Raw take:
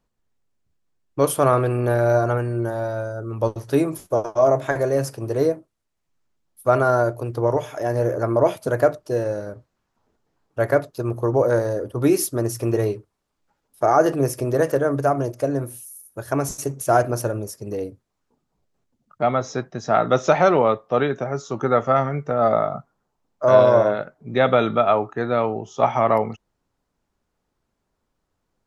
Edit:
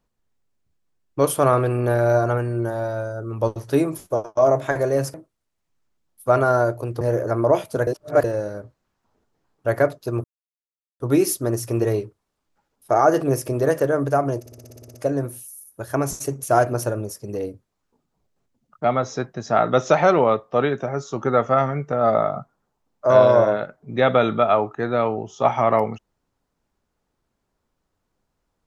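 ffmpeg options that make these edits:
ffmpeg -i in.wav -filter_complex "[0:a]asplit=17[link_01][link_02][link_03][link_04][link_05][link_06][link_07][link_08][link_09][link_10][link_11][link_12][link_13][link_14][link_15][link_16][link_17];[link_01]atrim=end=4.37,asetpts=PTS-STARTPTS,afade=type=out:start_time=4.1:duration=0.27:silence=0.0707946[link_18];[link_02]atrim=start=4.37:end=5.142,asetpts=PTS-STARTPTS,afade=type=in:duration=0.004:curve=hsin:silence=0.0707946[link_19];[link_03]atrim=start=5.528:end=7.402[link_20];[link_04]atrim=start=7.928:end=8.792[link_21];[link_05]atrim=start=8.788:end=9.162,asetpts=PTS-STARTPTS,areverse[link_22];[link_06]atrim=start=9.158:end=11.16,asetpts=PTS-STARTPTS,afade=type=out:start_time=1.998:duration=0.004:curve=hsin[link_23];[link_07]atrim=start=11.16:end=11.92,asetpts=PTS-STARTPTS,volume=0[link_24];[link_08]atrim=start=11.92:end=15.382,asetpts=PTS-STARTPTS,afade=type=in:duration=0.004:curve=hsin[link_25];[link_09]atrim=start=15.318:end=15.382[link_26];[link_10]atrim=start=15.318:end=15.382[link_27];[link_11]atrim=start=15.318:end=15.382[link_28];[link_12]atrim=start=15.318:end=15.382[link_29];[link_13]atrim=start=15.318:end=15.382[link_30];[link_14]atrim=start=15.318:end=15.382[link_31];[link_15]atrim=start=15.318:end=15.382[link_32];[link_16]atrim=start=15.318:end=15.382[link_33];[link_17]atrim=start=15.318[link_34];[link_18][link_19]concat=n=2:v=0:a=1[link_35];[link_35][link_20]acrossfade=duration=0.004:curve1=hsin:curve2=hsin[link_36];[link_36][link_21]acrossfade=duration=0.004:curve1=hsin:curve2=hsin[link_37];[link_37][link_22]acrossfade=duration=0.004:curve1=hsin:curve2=hsin[link_38];[link_23][link_24][link_25]concat=n=3:v=0:a=1[link_39];[link_38][link_39]acrossfade=duration=0.004:curve1=hsin:curve2=hsin[link_40];[link_40][link_26]acrossfade=duration=0.004:curve1=hsin:curve2=hsin[link_41];[link_41][link_27]acrossfade=duration=0.004:curve1=hsin:curve2=hsin[link_42];[link_42][link_28]acrossfade=duration=0.004:curve1=hsin:curve2=hsin[link_43];[link_43][link_29]acrossfade=duration=0.004:curve1=hsin:curve2=hsin[link_44];[link_44][link_30]acrossfade=duration=0.004:curve1=hsin:curve2=hsin[link_45];[link_45][link_31]acrossfade=duration=0.004:curve1=hsin:curve2=hsin[link_46];[link_46][link_32]acrossfade=duration=0.004:curve1=hsin:curve2=hsin[link_47];[link_47][link_33]acrossfade=duration=0.004:curve1=hsin:curve2=hsin[link_48];[link_48][link_34]acrossfade=duration=0.004:curve1=hsin:curve2=hsin" out.wav

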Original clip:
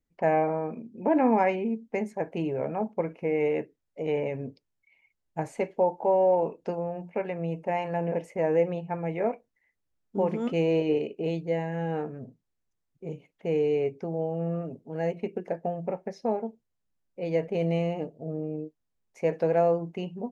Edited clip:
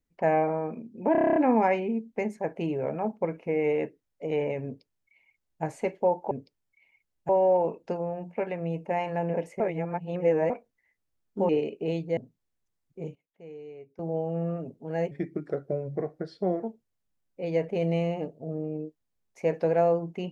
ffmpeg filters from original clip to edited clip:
ffmpeg -i in.wav -filter_complex "[0:a]asplit=19[link_01][link_02][link_03][link_04][link_05][link_06][link_07][link_08][link_09][link_10][link_11][link_12][link_13][link_14][link_15][link_16][link_17][link_18][link_19];[link_01]atrim=end=1.152[link_20];[link_02]atrim=start=1.118:end=1.152[link_21];[link_03]atrim=start=1.118:end=1.152[link_22];[link_04]atrim=start=1.118:end=1.152[link_23];[link_05]atrim=start=1.118:end=1.152[link_24];[link_06]atrim=start=1.118:end=1.152[link_25];[link_07]atrim=start=1.118:end=1.152[link_26];[link_08]atrim=start=1.118:end=1.152[link_27];[link_09]atrim=start=1.118:end=6.072[link_28];[link_10]atrim=start=4.408:end=5.392[link_29];[link_11]atrim=start=6.068:end=8.382[link_30];[link_12]atrim=start=8.378:end=9.282,asetpts=PTS-STARTPTS,areverse[link_31];[link_13]atrim=start=9.278:end=10.272[link_32];[link_14]atrim=start=10.868:end=11.552[link_33];[link_15]atrim=start=12.218:end=13.2,asetpts=PTS-STARTPTS,afade=type=out:start_time=0.832:duration=0.15:curve=log:silence=0.125893[link_34];[link_16]atrim=start=13.2:end=14.04,asetpts=PTS-STARTPTS,volume=-18dB[link_35];[link_17]atrim=start=14.04:end=15.164,asetpts=PTS-STARTPTS,afade=type=in:duration=0.15:curve=log:silence=0.125893[link_36];[link_18]atrim=start=15.16:end=16.42,asetpts=PTS-STARTPTS,asetrate=36603,aresample=44100[link_37];[link_19]atrim=start=16.416[link_38];[link_20][link_21]acrossfade=duration=0.004:curve1=hsin:curve2=hsin[link_39];[link_39][link_22]acrossfade=duration=0.004:curve1=hsin:curve2=hsin[link_40];[link_40][link_23]acrossfade=duration=0.004:curve1=hsin:curve2=hsin[link_41];[link_41][link_24]acrossfade=duration=0.004:curve1=hsin:curve2=hsin[link_42];[link_42][link_25]acrossfade=duration=0.004:curve1=hsin:curve2=hsin[link_43];[link_43][link_26]acrossfade=duration=0.004:curve1=hsin:curve2=hsin[link_44];[link_44][link_27]acrossfade=duration=0.004:curve1=hsin:curve2=hsin[link_45];[link_45][link_28]acrossfade=duration=0.004:curve1=hsin:curve2=hsin[link_46];[link_46][link_29]acrossfade=duration=0.004:curve1=hsin:curve2=hsin[link_47];[link_47][link_30]acrossfade=duration=0.004:curve1=hsin:curve2=hsin[link_48];[link_48][link_31]acrossfade=duration=0.004:curve1=hsin:curve2=hsin[link_49];[link_49][link_32]acrossfade=duration=0.004:curve1=hsin:curve2=hsin[link_50];[link_50][link_33]acrossfade=duration=0.004:curve1=hsin:curve2=hsin[link_51];[link_34][link_35][link_36]concat=n=3:v=0:a=1[link_52];[link_51][link_52]acrossfade=duration=0.004:curve1=hsin:curve2=hsin[link_53];[link_53][link_37]acrossfade=duration=0.004:curve1=hsin:curve2=hsin[link_54];[link_54][link_38]acrossfade=duration=0.004:curve1=hsin:curve2=hsin" out.wav

